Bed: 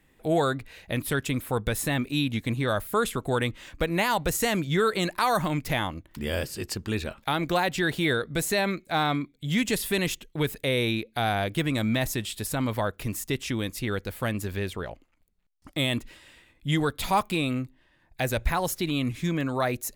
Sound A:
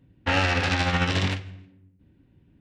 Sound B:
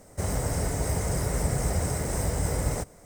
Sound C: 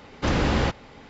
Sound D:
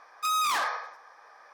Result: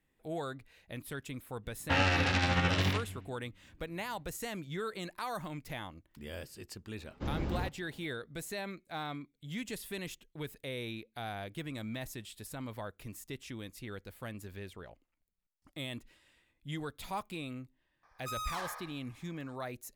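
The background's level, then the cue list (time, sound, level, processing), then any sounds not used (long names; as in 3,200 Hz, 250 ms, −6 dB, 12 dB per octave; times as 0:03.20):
bed −14.5 dB
0:01.63: mix in A −5.5 dB
0:06.98: mix in C −17 dB + tilt shelving filter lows +6 dB, about 630 Hz
0:18.03: mix in D −13 dB
not used: B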